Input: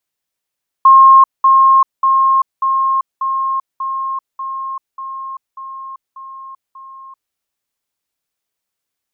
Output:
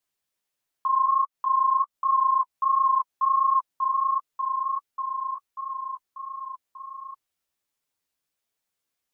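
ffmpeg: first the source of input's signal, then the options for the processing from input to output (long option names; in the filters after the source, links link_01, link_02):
-f lavfi -i "aevalsrc='pow(10,(-2.5-3*floor(t/0.59))/20)*sin(2*PI*1070*t)*clip(min(mod(t,0.59),0.39-mod(t,0.59))/0.005,0,1)':duration=6.49:sample_rate=44100"
-af "acompressor=threshold=-14dB:ratio=6,alimiter=limit=-15dB:level=0:latency=1:release=136,flanger=delay=6.3:depth=9.3:regen=8:speed=1.4:shape=triangular"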